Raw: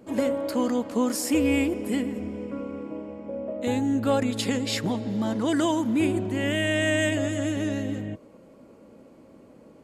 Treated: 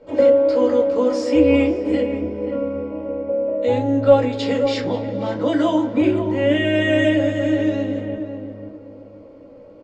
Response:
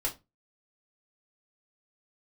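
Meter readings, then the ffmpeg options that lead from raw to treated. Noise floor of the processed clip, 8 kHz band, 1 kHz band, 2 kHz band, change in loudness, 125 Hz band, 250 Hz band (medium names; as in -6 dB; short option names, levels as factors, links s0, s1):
-43 dBFS, no reading, +5.5 dB, +3.5 dB, +7.0 dB, +4.5 dB, +5.5 dB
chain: -filter_complex "[0:a]lowpass=f=5500:w=0.5412,lowpass=f=5500:w=1.3066,equalizer=f=570:w=2.9:g=8,asplit=2[s0][s1];[s1]adelay=533,lowpass=f=1100:p=1,volume=0.447,asplit=2[s2][s3];[s3]adelay=533,lowpass=f=1100:p=1,volume=0.28,asplit=2[s4][s5];[s5]adelay=533,lowpass=f=1100:p=1,volume=0.28[s6];[s0][s2][s4][s6]amix=inputs=4:normalize=0[s7];[1:a]atrim=start_sample=2205[s8];[s7][s8]afir=irnorm=-1:irlink=0,volume=0.794"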